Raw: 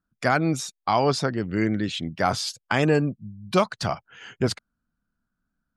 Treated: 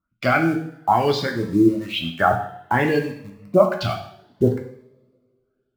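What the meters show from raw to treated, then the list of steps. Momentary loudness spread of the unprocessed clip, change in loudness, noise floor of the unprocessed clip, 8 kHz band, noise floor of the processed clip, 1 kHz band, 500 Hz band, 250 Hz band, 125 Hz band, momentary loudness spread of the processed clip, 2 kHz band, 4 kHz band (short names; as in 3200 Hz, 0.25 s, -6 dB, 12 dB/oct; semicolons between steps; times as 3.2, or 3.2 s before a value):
8 LU, +4.0 dB, -82 dBFS, n/a, -73 dBFS, +4.5 dB, +5.0 dB, +4.5 dB, +1.5 dB, 11 LU, +3.5 dB, +1.0 dB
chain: LFO low-pass sine 1.1 Hz 300–3500 Hz; reverb removal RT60 1.2 s; in parallel at -9 dB: bit-crush 6-bit; on the sum: two-slope reverb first 0.64 s, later 2.2 s, from -26 dB, DRR 1.5 dB; cascading phaser rising 0.58 Hz; gain -1 dB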